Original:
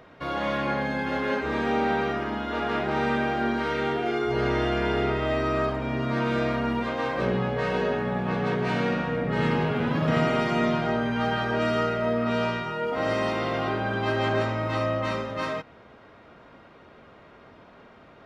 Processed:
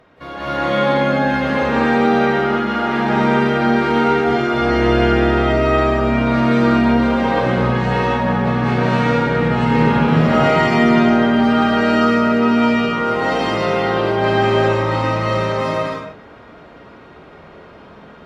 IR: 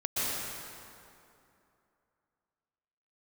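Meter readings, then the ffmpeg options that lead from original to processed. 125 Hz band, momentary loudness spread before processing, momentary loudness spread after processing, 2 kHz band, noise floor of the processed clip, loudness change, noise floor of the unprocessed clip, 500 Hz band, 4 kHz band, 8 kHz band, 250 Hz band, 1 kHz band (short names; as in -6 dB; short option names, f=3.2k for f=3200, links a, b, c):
+10.0 dB, 4 LU, 5 LU, +9.0 dB, -41 dBFS, +10.5 dB, -51 dBFS, +9.5 dB, +9.0 dB, n/a, +12.5 dB, +10.5 dB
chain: -filter_complex "[1:a]atrim=start_sample=2205,afade=t=out:st=0.42:d=0.01,atrim=end_sample=18963,asetrate=30870,aresample=44100[a];[0:a][a]afir=irnorm=-1:irlink=0,volume=-1.5dB"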